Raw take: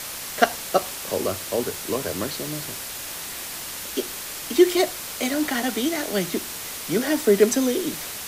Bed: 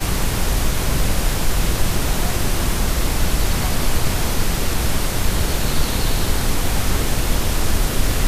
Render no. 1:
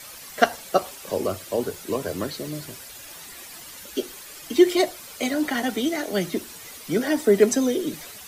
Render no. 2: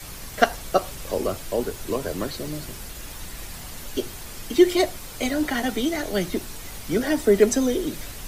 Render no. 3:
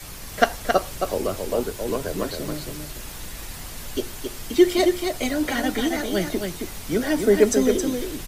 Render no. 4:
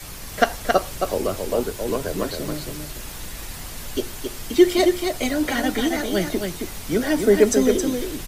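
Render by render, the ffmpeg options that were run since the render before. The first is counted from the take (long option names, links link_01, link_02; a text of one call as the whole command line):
ffmpeg -i in.wav -af "afftdn=noise_reduction=11:noise_floor=-34" out.wav
ffmpeg -i in.wav -i bed.wav -filter_complex "[1:a]volume=-20.5dB[link_01];[0:a][link_01]amix=inputs=2:normalize=0" out.wav
ffmpeg -i in.wav -af "aecho=1:1:270:0.531" out.wav
ffmpeg -i in.wav -af "volume=1.5dB,alimiter=limit=-3dB:level=0:latency=1" out.wav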